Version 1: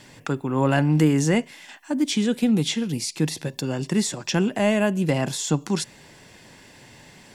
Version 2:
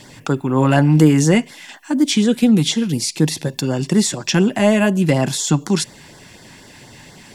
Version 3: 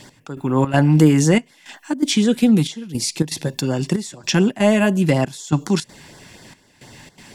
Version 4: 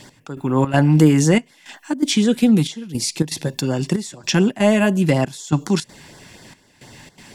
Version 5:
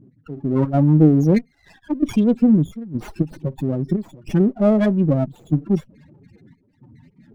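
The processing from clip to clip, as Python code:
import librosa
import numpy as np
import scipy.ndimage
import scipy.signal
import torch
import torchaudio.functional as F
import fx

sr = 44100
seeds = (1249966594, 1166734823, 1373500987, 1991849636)

y1 = fx.filter_lfo_notch(x, sr, shape='sine', hz=4.1, low_hz=440.0, high_hz=2700.0, q=1.8)
y1 = y1 * librosa.db_to_amplitude(7.0)
y2 = fx.step_gate(y1, sr, bpm=163, pattern='x...xxx.xxxxxx', floor_db=-12.0, edge_ms=4.5)
y2 = y2 * librosa.db_to_amplitude(-1.0)
y3 = y2
y4 = fx.spec_topn(y3, sr, count=8)
y4 = fx.running_max(y4, sr, window=9)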